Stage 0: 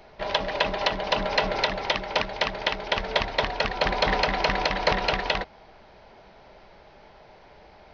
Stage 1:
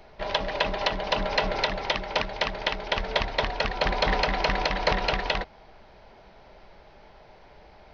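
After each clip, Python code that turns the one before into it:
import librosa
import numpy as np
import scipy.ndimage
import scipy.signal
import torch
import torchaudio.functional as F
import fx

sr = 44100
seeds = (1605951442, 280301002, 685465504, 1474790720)

y = fx.low_shelf(x, sr, hz=61.0, db=7.0)
y = y * librosa.db_to_amplitude(-1.5)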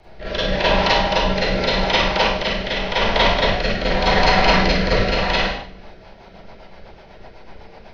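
y = fx.octave_divider(x, sr, octaves=1, level_db=-3.0)
y = fx.rev_schroeder(y, sr, rt60_s=0.68, comb_ms=33, drr_db=-9.0)
y = fx.rotary_switch(y, sr, hz=0.85, then_hz=8.0, switch_at_s=5.42)
y = y * librosa.db_to_amplitude(2.0)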